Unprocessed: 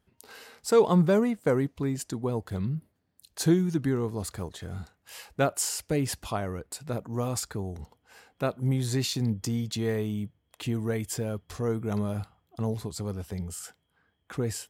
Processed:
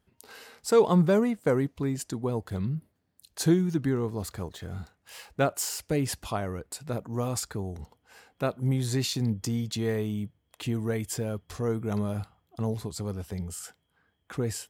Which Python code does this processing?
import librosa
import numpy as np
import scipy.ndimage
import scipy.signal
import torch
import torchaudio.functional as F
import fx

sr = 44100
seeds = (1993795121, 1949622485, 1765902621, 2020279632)

y = fx.resample_linear(x, sr, factor=2, at=(3.54, 5.8))